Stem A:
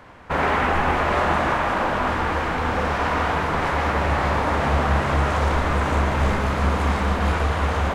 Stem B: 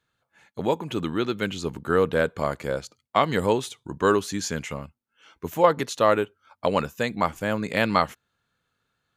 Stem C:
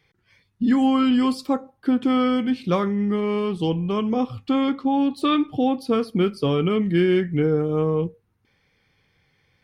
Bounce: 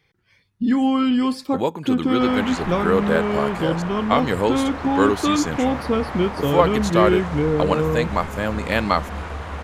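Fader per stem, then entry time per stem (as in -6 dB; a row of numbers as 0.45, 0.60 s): -9.0, +1.5, 0.0 dB; 1.90, 0.95, 0.00 s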